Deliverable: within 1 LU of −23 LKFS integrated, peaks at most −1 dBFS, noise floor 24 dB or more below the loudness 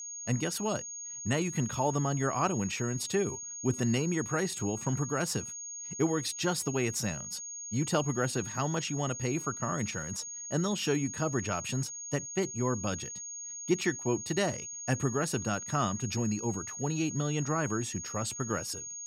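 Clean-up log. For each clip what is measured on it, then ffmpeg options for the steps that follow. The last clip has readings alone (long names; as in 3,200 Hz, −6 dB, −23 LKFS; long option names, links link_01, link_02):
interfering tone 6,600 Hz; level of the tone −39 dBFS; integrated loudness −32.0 LKFS; sample peak −14.0 dBFS; target loudness −23.0 LKFS
→ -af "bandreject=frequency=6600:width=30"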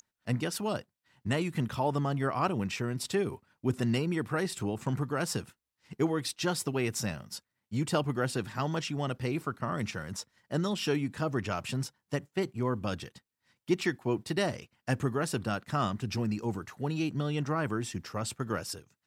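interfering tone none found; integrated loudness −32.5 LKFS; sample peak −14.5 dBFS; target loudness −23.0 LKFS
→ -af "volume=9.5dB"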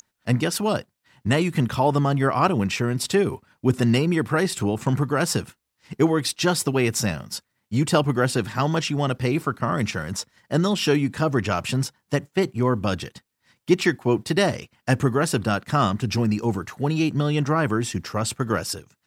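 integrated loudness −23.0 LKFS; sample peak −5.0 dBFS; background noise floor −76 dBFS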